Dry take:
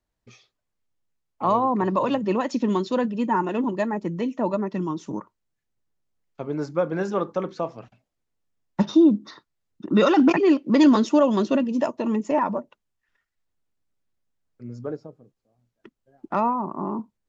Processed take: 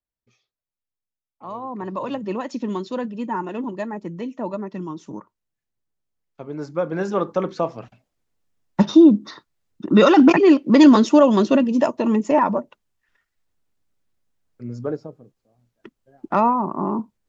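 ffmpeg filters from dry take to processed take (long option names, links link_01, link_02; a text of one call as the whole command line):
ffmpeg -i in.wav -af "volume=5dB,afade=type=in:start_time=1.46:duration=0.74:silence=0.298538,afade=type=in:start_time=6.52:duration=1:silence=0.375837" out.wav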